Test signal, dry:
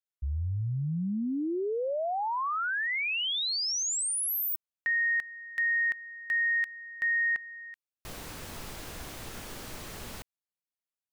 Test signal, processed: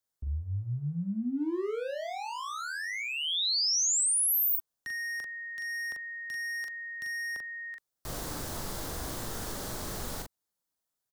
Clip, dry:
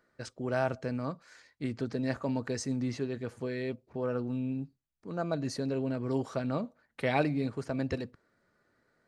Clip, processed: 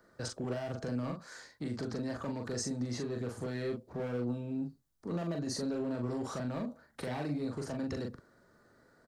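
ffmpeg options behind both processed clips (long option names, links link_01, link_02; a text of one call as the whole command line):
ffmpeg -i in.wav -filter_complex "[0:a]equalizer=frequency=2500:width_type=o:width=0.82:gain=-10.5,asplit=2[link_01][link_02];[link_02]acompressor=threshold=-44dB:ratio=4:attack=0.5:release=54:knee=1:detection=peak,volume=3dB[link_03];[link_01][link_03]amix=inputs=2:normalize=0,alimiter=level_in=1dB:limit=-24dB:level=0:latency=1:release=158,volume=-1dB,acrossover=split=410|2300[link_04][link_05][link_06];[link_04]acompressor=threshold=-34dB:ratio=4:attack=1.4:release=587:knee=2.83:detection=peak[link_07];[link_07][link_05][link_06]amix=inputs=3:normalize=0,acrossover=split=330|2900[link_08][link_09][link_10];[link_09]asoftclip=type=hard:threshold=-39dB[link_11];[link_08][link_11][link_10]amix=inputs=3:normalize=0,asplit=2[link_12][link_13];[link_13]adelay=41,volume=-4dB[link_14];[link_12][link_14]amix=inputs=2:normalize=0" out.wav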